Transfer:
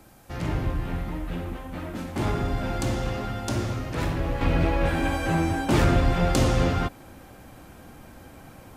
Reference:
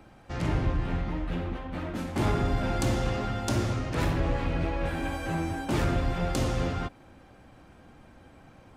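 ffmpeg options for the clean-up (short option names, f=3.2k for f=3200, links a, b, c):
-af "agate=range=-21dB:threshold=-39dB,asetnsamples=n=441:p=0,asendcmd='4.41 volume volume -6.5dB',volume=0dB"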